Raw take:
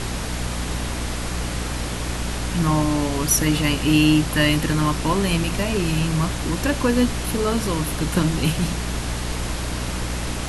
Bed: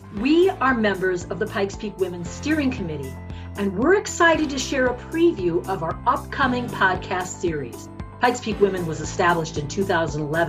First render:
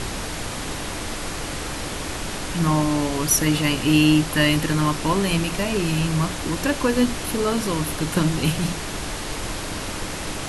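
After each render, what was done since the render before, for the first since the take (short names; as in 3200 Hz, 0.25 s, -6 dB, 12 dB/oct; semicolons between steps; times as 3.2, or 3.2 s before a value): de-hum 60 Hz, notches 4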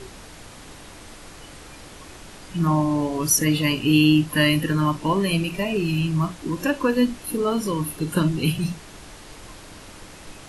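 noise print and reduce 13 dB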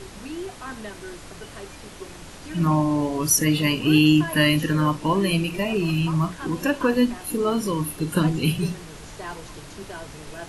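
add bed -17 dB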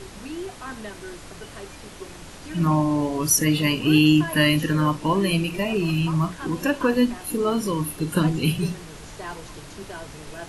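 nothing audible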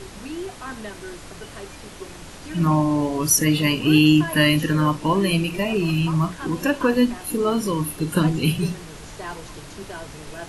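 gain +1.5 dB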